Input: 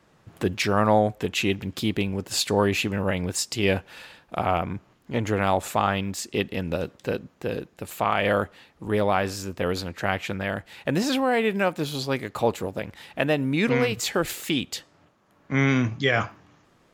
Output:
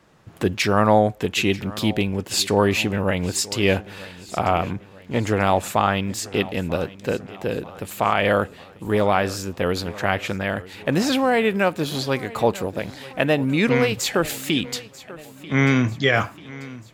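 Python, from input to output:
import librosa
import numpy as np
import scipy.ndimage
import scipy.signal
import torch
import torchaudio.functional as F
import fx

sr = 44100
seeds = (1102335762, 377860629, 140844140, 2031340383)

y = fx.echo_feedback(x, sr, ms=940, feedback_pct=51, wet_db=-18.5)
y = y * librosa.db_to_amplitude(3.5)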